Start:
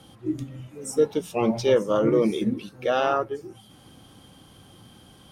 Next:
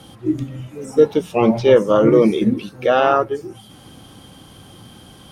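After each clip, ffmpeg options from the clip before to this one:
-filter_complex "[0:a]acrossover=split=3500[s0][s1];[s1]acompressor=threshold=0.00316:ratio=4:attack=1:release=60[s2];[s0][s2]amix=inputs=2:normalize=0,volume=2.51"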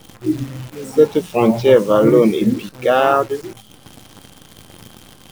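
-af "acrusher=bits=7:dc=4:mix=0:aa=0.000001,volume=1.12"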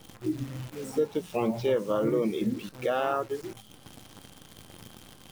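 -af "acompressor=threshold=0.0891:ratio=2,volume=0.422"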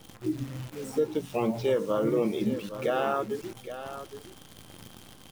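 -af "aecho=1:1:817:0.266"

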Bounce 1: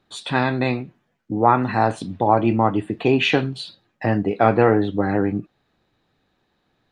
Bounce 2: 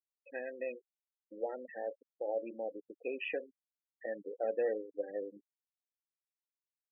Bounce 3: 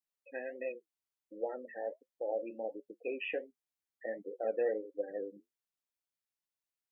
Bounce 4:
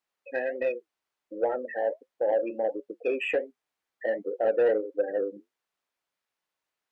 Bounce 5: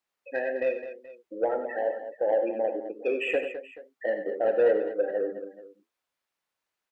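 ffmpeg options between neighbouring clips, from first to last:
-filter_complex "[0:a]asplit=3[s0][s1][s2];[s0]bandpass=f=530:t=q:w=8,volume=1[s3];[s1]bandpass=f=1840:t=q:w=8,volume=0.501[s4];[s2]bandpass=f=2480:t=q:w=8,volume=0.355[s5];[s3][s4][s5]amix=inputs=3:normalize=0,adynamicsmooth=sensitivity=7:basefreq=2300,afftfilt=real='re*gte(hypot(re,im),0.0355)':imag='im*gte(hypot(re,im),0.0355)':win_size=1024:overlap=0.75,volume=0.376"
-af "flanger=delay=6:depth=5.2:regen=-61:speed=1.4:shape=sinusoidal,volume=1.68"
-filter_complex "[0:a]asplit=2[s0][s1];[s1]highpass=f=720:p=1,volume=5.01,asoftclip=type=tanh:threshold=0.0794[s2];[s0][s2]amix=inputs=2:normalize=0,lowpass=f=1300:p=1,volume=0.501,volume=2.51"
-af "aecho=1:1:46|84|97|209|430:0.178|0.211|0.251|0.266|0.112"

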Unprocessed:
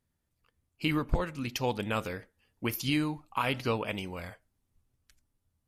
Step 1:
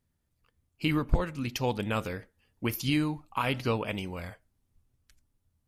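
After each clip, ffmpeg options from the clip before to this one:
-af "lowshelf=f=250:g=4"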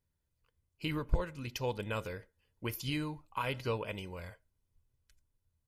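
-af "aecho=1:1:2:0.41,volume=0.447"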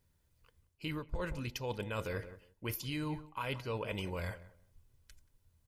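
-filter_complex "[0:a]asplit=2[s0][s1];[s1]adelay=180,lowpass=f=1500:p=1,volume=0.126,asplit=2[s2][s3];[s3]adelay=180,lowpass=f=1500:p=1,volume=0.2[s4];[s0][s2][s4]amix=inputs=3:normalize=0,areverse,acompressor=threshold=0.00631:ratio=8,areverse,volume=2.82"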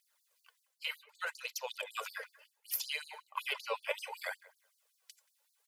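-af "aphaser=in_gain=1:out_gain=1:delay=4.1:decay=0.54:speed=0.66:type=triangular,afftfilt=real='re*gte(b*sr/1024,410*pow(4100/410,0.5+0.5*sin(2*PI*5.3*pts/sr)))':imag='im*gte(b*sr/1024,410*pow(4100/410,0.5+0.5*sin(2*PI*5.3*pts/sr)))':win_size=1024:overlap=0.75,volume=1.78"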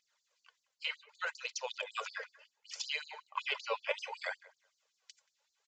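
-af "aresample=16000,aresample=44100,volume=1.12"

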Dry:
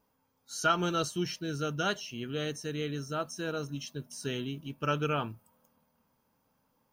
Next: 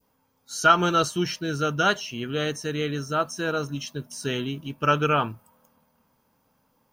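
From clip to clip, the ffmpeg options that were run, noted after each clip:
-af "adynamicequalizer=threshold=0.00631:dfrequency=1200:dqfactor=0.7:tfrequency=1200:tqfactor=0.7:attack=5:release=100:ratio=0.375:range=2.5:mode=boostabove:tftype=bell,volume=2"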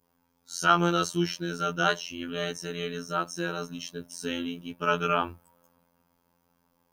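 -af "afftfilt=real='hypot(re,im)*cos(PI*b)':imag='0':win_size=2048:overlap=0.75"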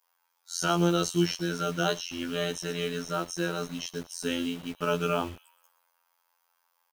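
-filter_complex "[0:a]acrossover=split=770|3100[s0][s1][s2];[s0]acrusher=bits=7:mix=0:aa=0.000001[s3];[s1]acompressor=threshold=0.0158:ratio=6[s4];[s2]aecho=1:1:120|240|360|480:0.251|0.0929|0.0344|0.0127[s5];[s3][s4][s5]amix=inputs=3:normalize=0,volume=1.26"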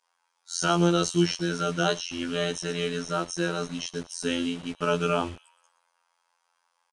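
-af "aresample=22050,aresample=44100,volume=1.33"

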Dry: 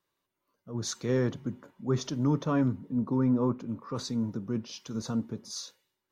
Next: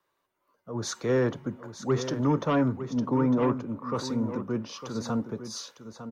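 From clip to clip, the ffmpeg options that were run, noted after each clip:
-filter_complex "[0:a]acrossover=split=230|400|1900[s0][s1][s2][s3];[s2]aeval=exprs='0.0708*sin(PI/2*1.78*val(0)/0.0708)':c=same[s4];[s0][s1][s4][s3]amix=inputs=4:normalize=0,aecho=1:1:904:0.282"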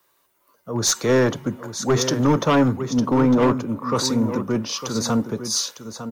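-af "crystalizer=i=2.5:c=0,aeval=exprs='clip(val(0),-1,0.075)':c=same,volume=2.51"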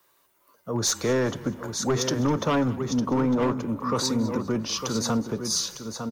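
-filter_complex "[0:a]acompressor=threshold=0.0562:ratio=2,asplit=4[s0][s1][s2][s3];[s1]adelay=201,afreqshift=-31,volume=0.1[s4];[s2]adelay=402,afreqshift=-62,volume=0.0462[s5];[s3]adelay=603,afreqshift=-93,volume=0.0211[s6];[s0][s4][s5][s6]amix=inputs=4:normalize=0"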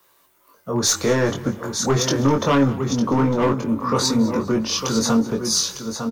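-filter_complex "[0:a]asplit=2[s0][s1];[s1]adelay=22,volume=0.631[s2];[s0][s2]amix=inputs=2:normalize=0,volume=1.68"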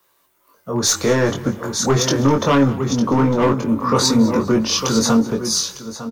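-af "dynaudnorm=f=120:g=11:m=3.76,volume=0.708"

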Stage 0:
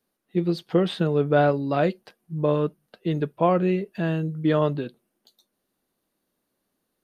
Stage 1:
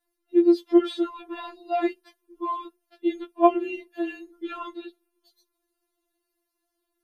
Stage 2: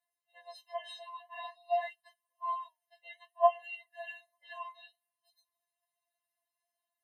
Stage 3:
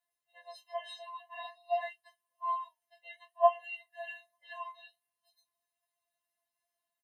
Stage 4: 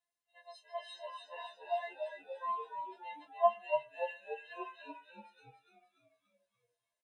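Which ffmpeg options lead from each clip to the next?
-af "afftfilt=real='re*4*eq(mod(b,16),0)':imag='im*4*eq(mod(b,16),0)':win_size=2048:overlap=0.75"
-af "flanger=delay=2:depth=4.8:regen=80:speed=0.53:shape=triangular,afftfilt=real='re*eq(mod(floor(b*sr/1024/540),2),1)':imag='im*eq(mod(floor(b*sr/1024/540),2),1)':win_size=1024:overlap=0.75"
-filter_complex "[0:a]asplit=2[s0][s1];[s1]adelay=25,volume=0.266[s2];[s0][s2]amix=inputs=2:normalize=0"
-filter_complex "[0:a]asplit=2[s0][s1];[s1]asplit=7[s2][s3][s4][s5][s6][s7][s8];[s2]adelay=290,afreqshift=-80,volume=0.531[s9];[s3]adelay=580,afreqshift=-160,volume=0.292[s10];[s4]adelay=870,afreqshift=-240,volume=0.16[s11];[s5]adelay=1160,afreqshift=-320,volume=0.0881[s12];[s6]adelay=1450,afreqshift=-400,volume=0.0484[s13];[s7]adelay=1740,afreqshift=-480,volume=0.0266[s14];[s8]adelay=2030,afreqshift=-560,volume=0.0146[s15];[s9][s10][s11][s12][s13][s14][s15]amix=inputs=7:normalize=0[s16];[s0][s16]amix=inputs=2:normalize=0,aresample=22050,aresample=44100,volume=0.668"

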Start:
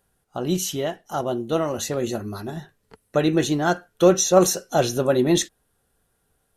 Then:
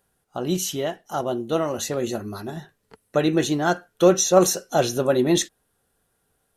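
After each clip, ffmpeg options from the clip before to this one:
-af "lowshelf=f=91:g=-6.5"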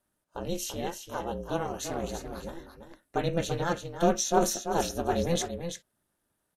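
-af "aeval=exprs='val(0)*sin(2*PI*170*n/s)':c=same,aecho=1:1:338:0.398,volume=0.531"

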